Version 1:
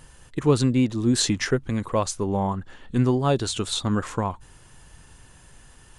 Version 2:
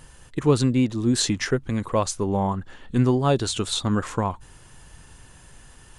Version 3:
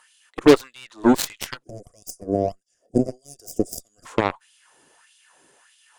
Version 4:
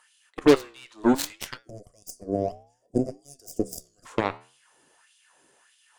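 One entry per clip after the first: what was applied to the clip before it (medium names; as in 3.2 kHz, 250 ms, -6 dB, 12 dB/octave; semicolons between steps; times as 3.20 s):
gain riding within 4 dB 2 s
LFO high-pass sine 1.6 Hz 300–3300 Hz; Chebyshev shaper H 4 -21 dB, 7 -14 dB, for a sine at -7 dBFS; time-frequency box 1.63–4.06 s, 750–4700 Hz -28 dB; trim +2 dB
flange 0.62 Hz, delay 7.9 ms, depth 9 ms, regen -81%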